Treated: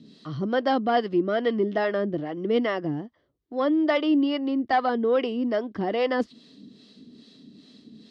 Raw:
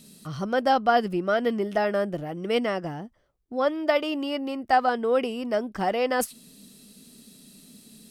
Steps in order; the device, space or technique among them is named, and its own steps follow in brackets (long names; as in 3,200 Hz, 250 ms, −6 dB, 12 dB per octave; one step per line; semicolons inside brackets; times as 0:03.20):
guitar amplifier with harmonic tremolo (two-band tremolo in antiphase 2.4 Hz, depth 70%, crossover 470 Hz; soft clipping −15 dBFS, distortion −20 dB; loudspeaker in its box 100–4,200 Hz, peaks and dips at 180 Hz −5 dB, 300 Hz +6 dB, 580 Hz −4 dB, 820 Hz −6 dB, 1,400 Hz −7 dB, 2,500 Hz −9 dB)
level +6.5 dB